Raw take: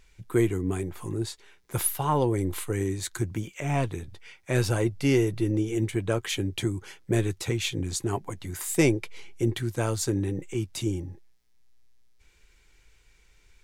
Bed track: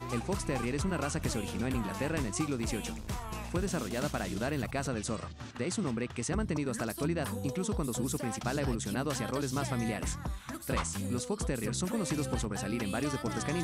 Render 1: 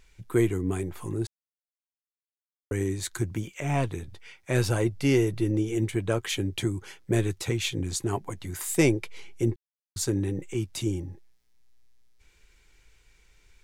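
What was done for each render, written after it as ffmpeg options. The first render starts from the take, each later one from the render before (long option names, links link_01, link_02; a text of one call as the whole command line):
ffmpeg -i in.wav -filter_complex "[0:a]asplit=5[link_01][link_02][link_03][link_04][link_05];[link_01]atrim=end=1.27,asetpts=PTS-STARTPTS,afade=type=out:start_time=1.266:duration=0.004:curve=hsin[link_06];[link_02]atrim=start=1.27:end=2.71,asetpts=PTS-STARTPTS,volume=0[link_07];[link_03]atrim=start=2.71:end=9.56,asetpts=PTS-STARTPTS,afade=type=in:duration=0.004:curve=hsin,afade=type=out:start_time=6.846:duration=0.004:curve=hsin[link_08];[link_04]atrim=start=9.56:end=9.96,asetpts=PTS-STARTPTS,volume=0[link_09];[link_05]atrim=start=9.96,asetpts=PTS-STARTPTS,afade=type=in:duration=0.004:curve=hsin[link_10];[link_06][link_07][link_08][link_09][link_10]concat=n=5:v=0:a=1" out.wav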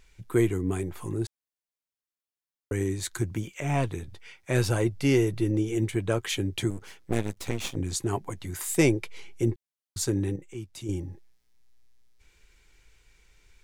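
ffmpeg -i in.wav -filter_complex "[0:a]asettb=1/sr,asplit=3[link_01][link_02][link_03];[link_01]atrim=end=6.704[link_04];[link_02]atrim=start=6.7:end=7.76,asetpts=PTS-STARTPTS,afade=type=in:duration=0.004:curve=qsin,afade=type=out:start_time=1.056:duration=0.004:curve=qsin,aeval=exprs='max(val(0),0)':channel_layout=same[link_05];[link_03]atrim=start=7.756[link_06];[link_04][link_05]acrossfade=duration=0.004:curve1=hsin:curve2=qsin[link_07];[link_07][link_06]acrossfade=duration=0.004:curve1=qsin:curve2=hsin,asplit=3[link_08][link_09][link_10];[link_08]atrim=end=10.362[link_11];[link_09]atrim=start=10.358:end=10.892,asetpts=PTS-STARTPTS,volume=-8.5dB[link_12];[link_10]atrim=start=10.888[link_13];[link_11][link_12]acrossfade=duration=0.004:curve1=hsin:curve2=hsin[link_14];[link_14][link_13]acrossfade=duration=0.004:curve1=hsin:curve2=hsin" out.wav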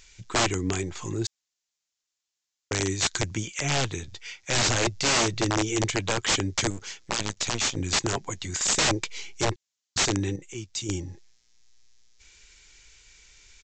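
ffmpeg -i in.wav -af "crystalizer=i=6.5:c=0,aresample=16000,aeval=exprs='(mod(7.08*val(0)+1,2)-1)/7.08':channel_layout=same,aresample=44100" out.wav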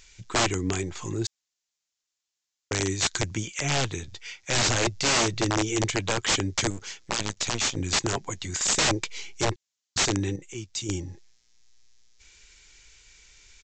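ffmpeg -i in.wav -af anull out.wav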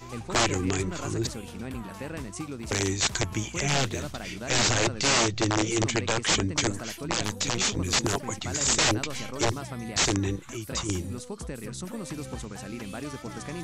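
ffmpeg -i in.wav -i bed.wav -filter_complex "[1:a]volume=-3.5dB[link_01];[0:a][link_01]amix=inputs=2:normalize=0" out.wav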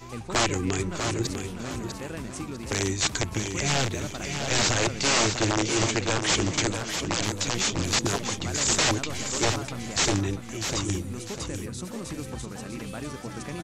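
ffmpeg -i in.wav -af "aecho=1:1:648|1296|1944|2592:0.447|0.143|0.0457|0.0146" out.wav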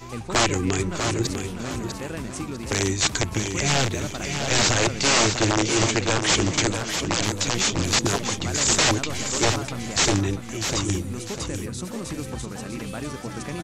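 ffmpeg -i in.wav -af "volume=3.5dB" out.wav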